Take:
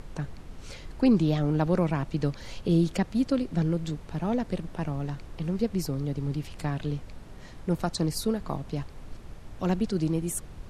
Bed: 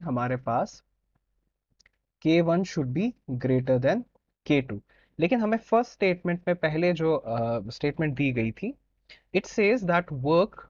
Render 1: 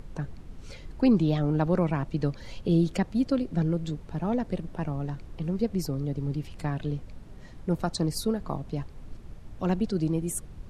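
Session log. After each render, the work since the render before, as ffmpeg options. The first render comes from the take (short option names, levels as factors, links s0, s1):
-af "afftdn=nr=6:nf=-45"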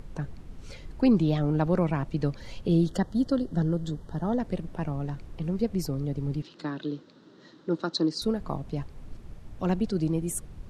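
-filter_complex "[0:a]asettb=1/sr,asplit=3[s0][s1][s2];[s0]atrim=end=2.864[s3];[s1]atrim=start=2.86:end=4.4,asetpts=PTS-STARTPTS,afade=t=in:d=0.004:c=qsin,afade=t=out:st=1.536:d=0.004:c=qsin,asuperstop=centerf=2400:order=8:qfactor=2.5[s4];[s2]atrim=start=4.396[s5];[s3][s4]acrossfade=d=0.004:c1=hsin:c2=qsin[s6];[s6][s5]acrossfade=d=0.004:c1=qsin:c2=hsin,asettb=1/sr,asplit=3[s7][s8][s9];[s7]atrim=end=6.424[s10];[s8]atrim=start=6.42:end=8.22,asetpts=PTS-STARTPTS,afade=t=in:d=0.004:c=qsin,afade=t=out:st=1.796:d=0.004:c=qsin,highpass=f=190:w=0.5412,highpass=f=190:w=1.3066,equalizer=f=210:t=q:w=4:g=-5,equalizer=f=320:t=q:w=4:g=7,equalizer=f=730:t=q:w=4:g=-9,equalizer=f=1400:t=q:w=4:g=4,equalizer=f=2300:t=q:w=4:g=-10,equalizer=f=3900:t=q:w=4:g=8,lowpass=f=6100:w=0.5412,lowpass=f=6100:w=1.3066[s11];[s9]atrim=start=8.216[s12];[s10][s11]acrossfade=d=0.004:c1=hsin:c2=qsin[s13];[s13][s12]acrossfade=d=0.004:c1=qsin:c2=hsin"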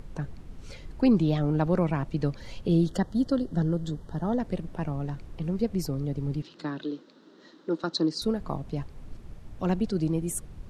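-filter_complex "[0:a]asettb=1/sr,asplit=3[s0][s1][s2];[s0]atrim=end=6.844[s3];[s1]atrim=start=6.84:end=7.84,asetpts=PTS-STARTPTS,afade=t=in:d=0.004:c=qsin,afade=t=out:st=0.996:d=0.004:c=qsin,highpass=f=200:w=0.5412,highpass=f=200:w=1.3066[s4];[s2]atrim=start=7.836[s5];[s3][s4]acrossfade=d=0.004:c1=hsin:c2=qsin[s6];[s6][s5]acrossfade=d=0.004:c1=qsin:c2=hsin"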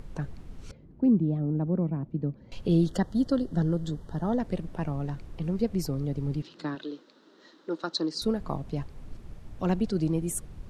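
-filter_complex "[0:a]asettb=1/sr,asplit=3[s0][s1][s2];[s0]atrim=end=0.714[s3];[s1]atrim=start=0.71:end=2.52,asetpts=PTS-STARTPTS,afade=t=in:d=0.004:c=qsin,afade=t=out:st=1.806:d=0.004:c=qsin,bandpass=f=210:t=q:w=1.1[s4];[s2]atrim=start=2.516[s5];[s3][s4]acrossfade=d=0.004:c1=hsin:c2=qsin[s6];[s6][s5]acrossfade=d=0.004:c1=qsin:c2=hsin,asettb=1/sr,asplit=3[s7][s8][s9];[s7]atrim=end=6.754[s10];[s8]atrim=start=6.75:end=8.14,asetpts=PTS-STARTPTS,afade=t=in:d=0.004:c=qsin,afade=t=out:st=1.386:d=0.004:c=qsin,lowshelf=f=230:g=-12[s11];[s9]atrim=start=8.136[s12];[s10][s11]acrossfade=d=0.004:c1=hsin:c2=qsin[s13];[s13][s12]acrossfade=d=0.004:c1=qsin:c2=hsin"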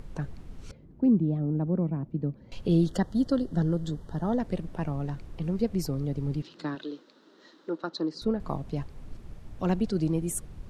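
-filter_complex "[0:a]asettb=1/sr,asplit=3[s0][s1][s2];[s0]atrim=end=7.704[s3];[s1]atrim=start=7.7:end=8.4,asetpts=PTS-STARTPTS,afade=t=in:d=0.004:c=qsin,afade=t=out:st=0.696:d=0.004:c=qsin,lowpass=f=1800:p=1[s4];[s2]atrim=start=8.396[s5];[s3][s4]acrossfade=d=0.004:c1=hsin:c2=qsin[s6];[s6][s5]acrossfade=d=0.004:c1=qsin:c2=hsin"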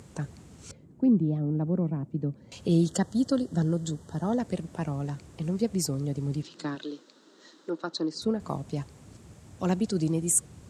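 -af "highpass=f=76:w=0.5412,highpass=f=76:w=1.3066,equalizer=f=7600:t=o:w=0.86:g=14"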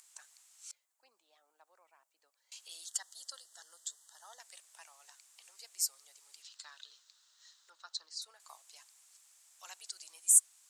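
-af "highpass=f=760:w=0.5412,highpass=f=760:w=1.3066,aderivative"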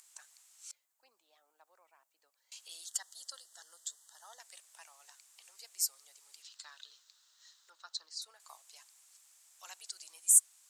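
-af "equalizer=f=14000:w=3.3:g=8"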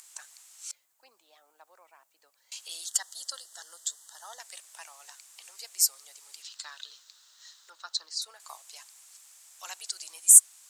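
-af "volume=2.82,alimiter=limit=0.891:level=0:latency=1"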